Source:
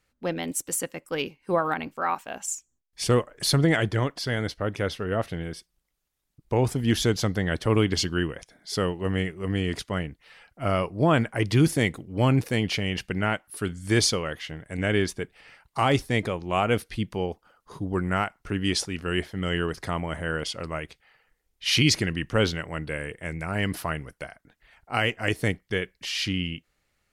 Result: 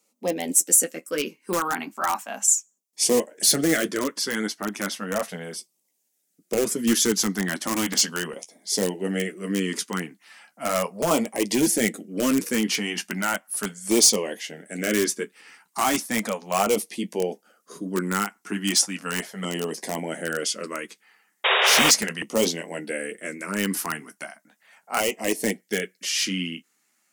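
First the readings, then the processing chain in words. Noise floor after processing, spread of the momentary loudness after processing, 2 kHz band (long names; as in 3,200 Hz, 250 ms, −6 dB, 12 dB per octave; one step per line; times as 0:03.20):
−73 dBFS, 14 LU, +2.0 dB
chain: elliptic high-pass filter 200 Hz, stop band 80 dB
flanger 0.43 Hz, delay 8.6 ms, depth 5.1 ms, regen −31%
in parallel at −10 dB: wrap-around overflow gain 22 dB
on the sum: auto-filter notch saw down 0.36 Hz 290–1,700 Hz
sound drawn into the spectrogram noise, 0:21.44–0:21.91, 380–3,800 Hz −24 dBFS
high shelf with overshoot 5,100 Hz +7.5 dB, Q 1.5
level +5.5 dB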